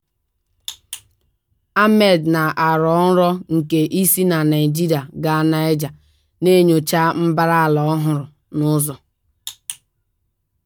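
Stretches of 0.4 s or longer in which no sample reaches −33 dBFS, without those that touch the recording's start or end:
0:00.98–0:01.76
0:05.91–0:06.42
0:08.96–0:09.47

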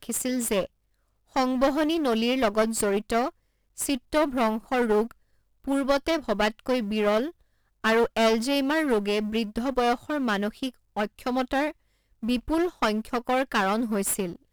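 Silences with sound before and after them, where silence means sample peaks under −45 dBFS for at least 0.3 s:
0:00.67–0:01.32
0:03.30–0:03.77
0:05.12–0:05.64
0:07.31–0:07.84
0:11.72–0:12.23

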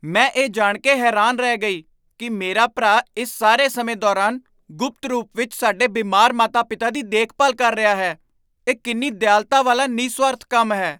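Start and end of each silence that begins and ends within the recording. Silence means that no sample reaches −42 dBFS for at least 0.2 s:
0:01.81–0:02.20
0:04.40–0:04.70
0:08.16–0:08.67

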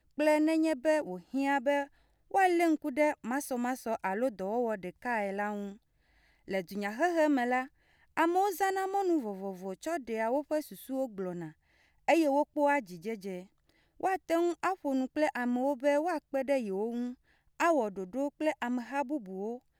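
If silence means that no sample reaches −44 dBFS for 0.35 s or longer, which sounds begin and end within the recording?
0:02.31–0:05.74
0:06.48–0:07.67
0:08.17–0:11.50
0:12.08–0:13.43
0:14.00–0:17.13

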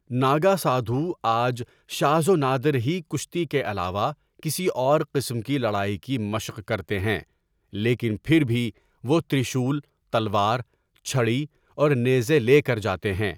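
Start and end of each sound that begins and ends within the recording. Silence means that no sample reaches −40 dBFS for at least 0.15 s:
0:01.89–0:04.13
0:04.40–0:07.22
0:07.73–0:08.70
0:09.04–0:09.80
0:10.13–0:10.62
0:10.96–0:11.46

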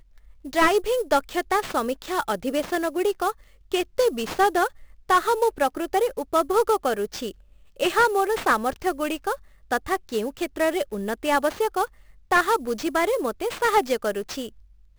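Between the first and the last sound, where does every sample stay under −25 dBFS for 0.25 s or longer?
0:03.31–0:03.74
0:04.67–0:05.10
0:07.29–0:07.80
0:09.34–0:09.72
0:11.85–0:12.32

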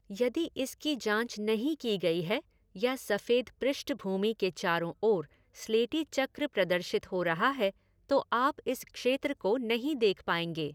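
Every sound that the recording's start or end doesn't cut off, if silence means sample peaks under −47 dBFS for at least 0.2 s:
0:02.76–0:05.25
0:05.55–0:07.71

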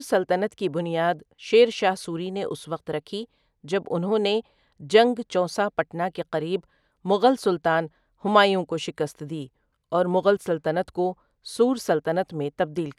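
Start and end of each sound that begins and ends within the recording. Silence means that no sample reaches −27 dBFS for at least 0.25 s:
0:01.46–0:03.22
0:03.68–0:04.40
0:04.91–0:06.57
0:07.06–0:07.86
0:08.25–0:09.42
0:09.93–0:11.11

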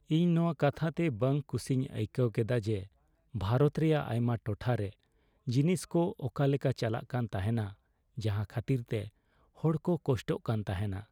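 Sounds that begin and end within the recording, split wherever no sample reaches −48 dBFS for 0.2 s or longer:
0:03.34–0:04.93
0:05.47–0:07.73
0:08.17–0:09.09

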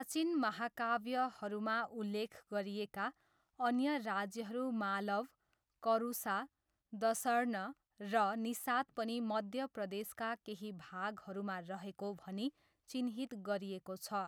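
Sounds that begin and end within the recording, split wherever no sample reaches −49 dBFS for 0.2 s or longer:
0:03.60–0:05.26
0:05.83–0:06.45
0:06.93–0:07.72
0:08.01–0:12.49

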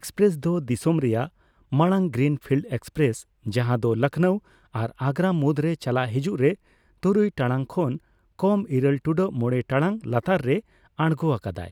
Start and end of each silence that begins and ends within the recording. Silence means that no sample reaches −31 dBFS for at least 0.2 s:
0:01.26–0:01.72
0:03.20–0:03.46
0:04.38–0:04.75
0:06.54–0:07.03
0:07.97–0:08.39
0:10.60–0:10.99

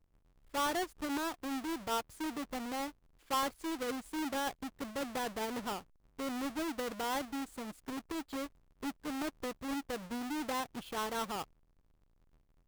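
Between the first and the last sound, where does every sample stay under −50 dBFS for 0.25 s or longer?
0:02.90–0:03.30
0:05.81–0:06.19
0:08.47–0:08.83

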